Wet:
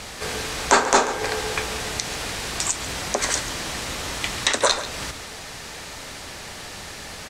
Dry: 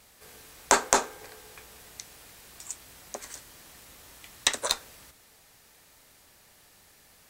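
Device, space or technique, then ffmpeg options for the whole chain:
loud club master: -filter_complex "[0:a]acompressor=threshold=0.0126:ratio=2,asoftclip=type=hard:threshold=0.2,alimiter=level_in=16.8:limit=0.891:release=50:level=0:latency=1,lowpass=6900,asplit=2[s0][s1];[s1]adelay=139.9,volume=0.224,highshelf=f=4000:g=-3.15[s2];[s0][s2]amix=inputs=2:normalize=0,volume=0.891"

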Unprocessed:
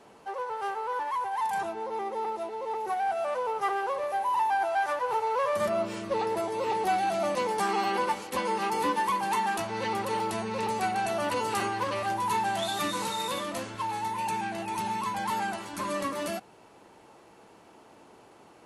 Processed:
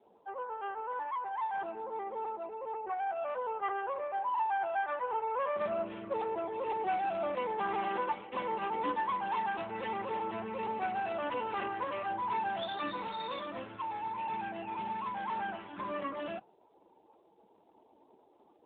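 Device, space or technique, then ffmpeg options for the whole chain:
mobile call with aggressive noise cancelling: -af "highpass=f=150:p=1,afftdn=nr=35:nf=-50,volume=0.562" -ar 8000 -c:a libopencore_amrnb -b:a 12200

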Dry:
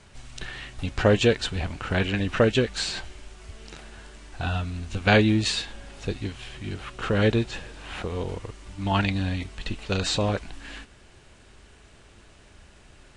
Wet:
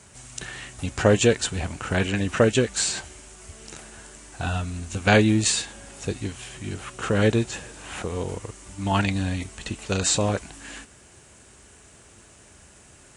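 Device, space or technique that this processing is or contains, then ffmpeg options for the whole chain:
budget condenser microphone: -af "highpass=70,highshelf=f=5600:t=q:w=1.5:g=9,volume=1.19"

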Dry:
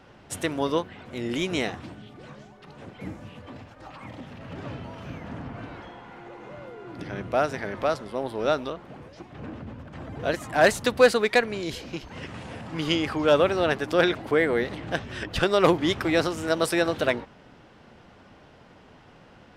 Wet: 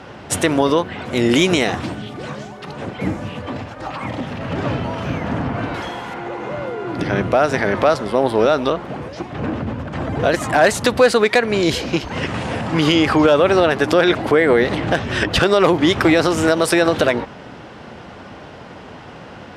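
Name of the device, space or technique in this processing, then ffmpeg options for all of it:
mastering chain: -filter_complex "[0:a]asettb=1/sr,asplit=3[s0][s1][s2];[s0]atrim=end=5.744[s3];[s1]atrim=start=5.74:end=6.14,asetpts=PTS-STARTPTS,afade=t=in:d=0.004:c=qsin,afade=t=out:st=0.396:d=0.004:c=qsin,aemphasis=mode=production:type=75fm[s4];[s2]atrim=start=6.136[s5];[s3][s4]acrossfade=d=0.004:c1=hsin:c2=qsin[s6];[s6][s5]acrossfade=d=0.004:c1=qsin:c2=hsin,lowpass=12000,asettb=1/sr,asplit=3[s7][s8][s9];[s7]atrim=end=1.014[s10];[s8]atrim=start=1.01:end=2.72,asetpts=PTS-STARTPTS,afade=t=in:d=0.004:c=qsin,afade=t=out:st=1.706:d=0.004:c=qsin,highshelf=f=5300:g=5.5[s11];[s9]atrim=start=2.716[s12];[s10][s11]acrossfade=d=0.004:c1=hsin:c2=qsin[s13];[s13][s12]acrossfade=d=0.004:c1=qsin:c2=hsin,highpass=51,equalizer=f=750:t=o:w=2.6:g=2,acompressor=threshold=0.0631:ratio=2,asoftclip=type=hard:threshold=0.224,alimiter=level_in=7.08:limit=0.891:release=50:level=0:latency=1,volume=0.708"

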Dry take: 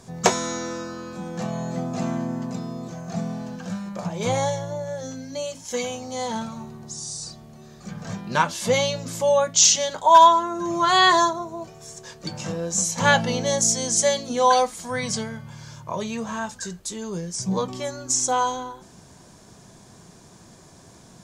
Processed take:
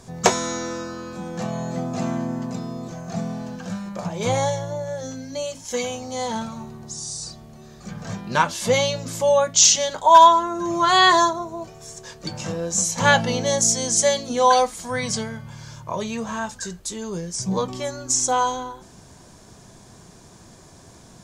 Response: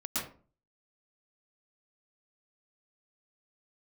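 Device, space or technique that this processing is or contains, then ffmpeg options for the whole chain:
low shelf boost with a cut just above: -af "lowshelf=f=76:g=6,equalizer=f=170:t=o:w=0.77:g=-2.5,volume=1.19"

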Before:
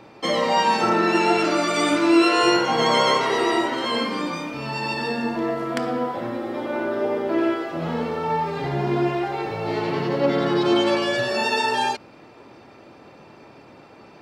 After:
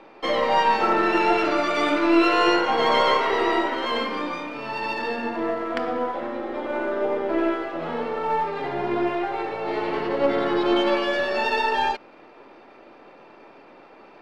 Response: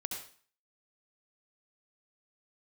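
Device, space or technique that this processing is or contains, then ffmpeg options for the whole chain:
crystal radio: -af "highpass=310,lowpass=3200,aeval=exprs='if(lt(val(0),0),0.708*val(0),val(0))':c=same,volume=1.19"

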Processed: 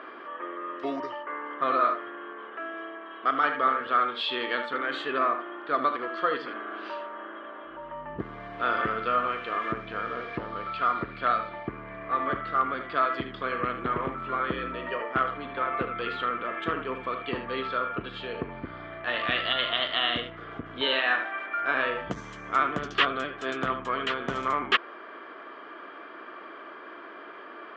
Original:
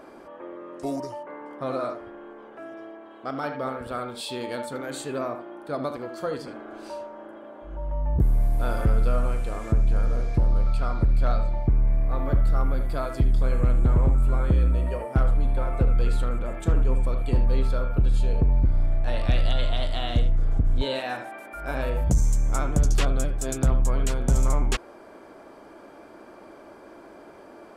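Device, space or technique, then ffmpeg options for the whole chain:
phone earpiece: -af "highpass=410,equalizer=f=560:t=q:w=4:g=-7,equalizer=f=830:t=q:w=4:g=-8,equalizer=f=1200:t=q:w=4:g=9,equalizer=f=1800:t=q:w=4:g=8,equalizer=f=3100:t=q:w=4:g=8,lowpass=f=3500:w=0.5412,lowpass=f=3500:w=1.3066,volume=1.68"

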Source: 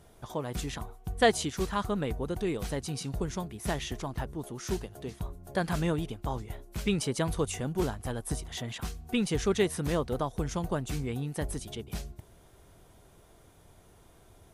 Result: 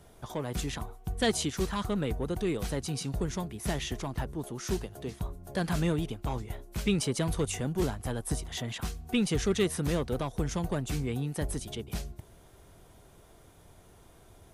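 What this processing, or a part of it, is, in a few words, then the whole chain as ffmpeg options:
one-band saturation: -filter_complex "[0:a]acrossover=split=360|2200[s0][s1][s2];[s1]asoftclip=type=tanh:threshold=0.0251[s3];[s0][s3][s2]amix=inputs=3:normalize=0,volume=1.19"

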